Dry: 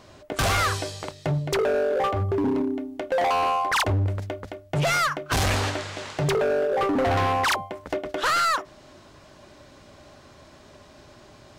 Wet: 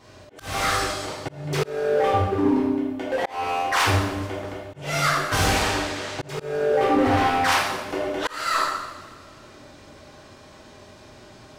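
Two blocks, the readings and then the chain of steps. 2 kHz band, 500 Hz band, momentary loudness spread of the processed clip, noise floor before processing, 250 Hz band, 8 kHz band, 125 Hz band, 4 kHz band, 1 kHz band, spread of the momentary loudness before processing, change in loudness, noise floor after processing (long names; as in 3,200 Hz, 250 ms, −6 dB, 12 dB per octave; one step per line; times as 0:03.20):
+2.0 dB, +0.5 dB, 12 LU, −51 dBFS, +3.5 dB, +2.0 dB, −2.0 dB, +2.0 dB, +1.5 dB, 10 LU, +1.0 dB, −47 dBFS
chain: coupled-rooms reverb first 0.94 s, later 2.4 s, DRR −8.5 dB
volume swells 360 ms
level −5.5 dB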